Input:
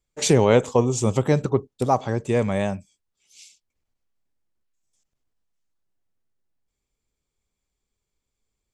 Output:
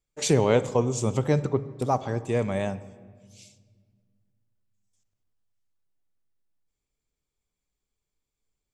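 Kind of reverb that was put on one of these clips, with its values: simulated room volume 2300 m³, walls mixed, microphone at 0.4 m; trim -4.5 dB

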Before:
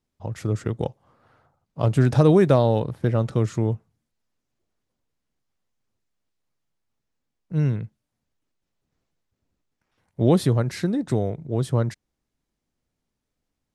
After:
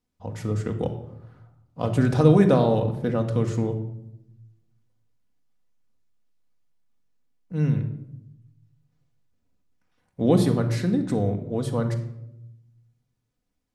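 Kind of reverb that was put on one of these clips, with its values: simulated room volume 2500 m³, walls furnished, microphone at 1.9 m; trim -2.5 dB

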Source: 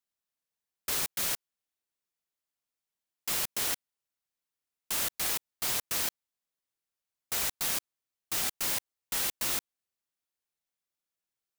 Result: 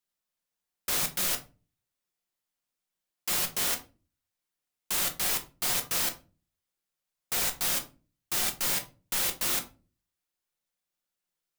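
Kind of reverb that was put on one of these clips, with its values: simulated room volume 160 m³, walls furnished, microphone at 0.92 m; trim +1.5 dB

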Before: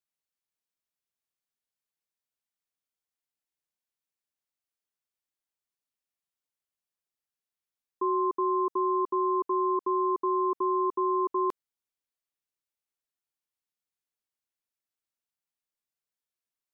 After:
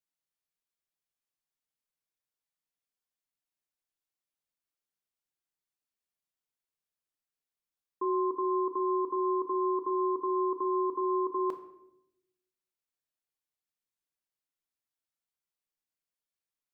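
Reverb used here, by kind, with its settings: simulated room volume 230 m³, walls mixed, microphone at 0.51 m; trim -3.5 dB

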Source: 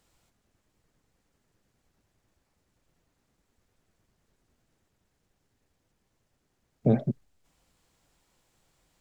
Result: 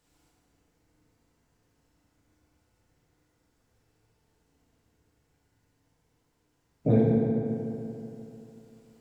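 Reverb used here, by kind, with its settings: FDN reverb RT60 3.1 s, high-frequency decay 0.55×, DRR -6.5 dB; trim -4.5 dB

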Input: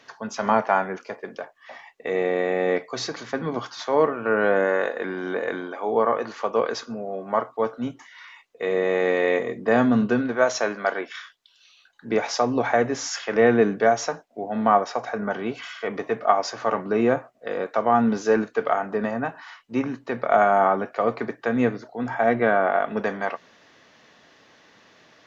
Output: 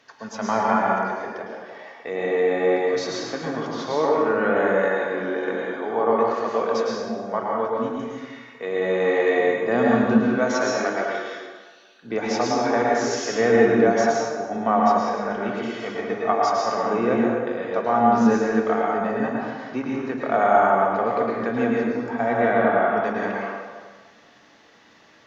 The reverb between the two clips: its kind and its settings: plate-style reverb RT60 1.5 s, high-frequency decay 0.7×, pre-delay 95 ms, DRR -3.5 dB; trim -4 dB

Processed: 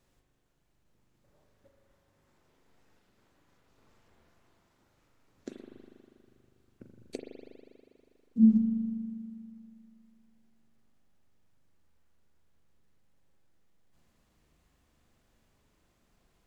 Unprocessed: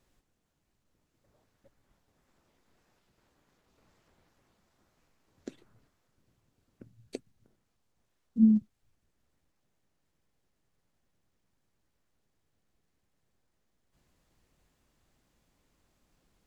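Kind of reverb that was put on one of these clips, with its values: spring tank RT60 2.5 s, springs 40 ms, chirp 25 ms, DRR 1.5 dB

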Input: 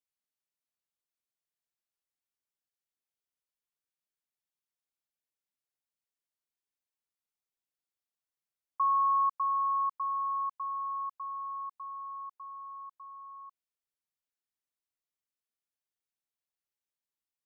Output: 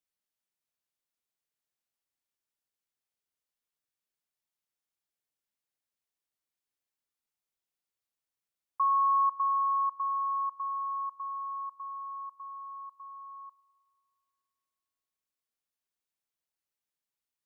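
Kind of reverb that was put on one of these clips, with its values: FDN reverb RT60 2.5 s, high-frequency decay 0.95×, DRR 17.5 dB; trim +1 dB

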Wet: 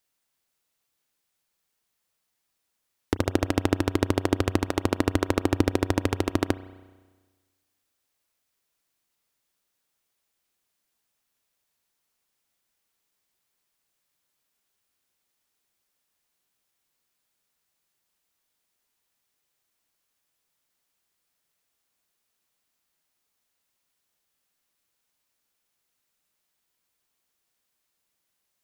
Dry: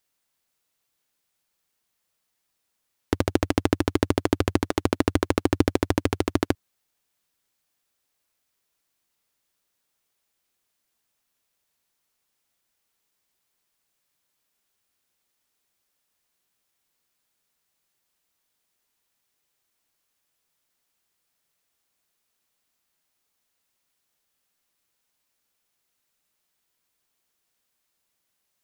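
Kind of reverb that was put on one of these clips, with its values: spring tank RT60 1.4 s, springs 32 ms, chirp 55 ms, DRR 15.5 dB; trim -1.5 dB

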